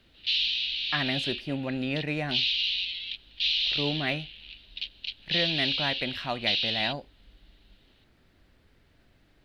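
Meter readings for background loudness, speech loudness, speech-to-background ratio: -28.0 LUFS, -32.5 LUFS, -4.5 dB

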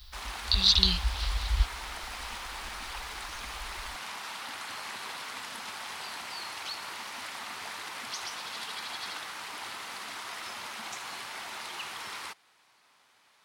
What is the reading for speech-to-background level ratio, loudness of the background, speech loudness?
12.5 dB, -38.0 LUFS, -25.5 LUFS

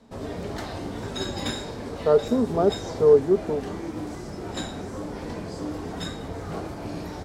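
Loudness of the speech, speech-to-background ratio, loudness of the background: -22.0 LUFS, 11.5 dB, -33.5 LUFS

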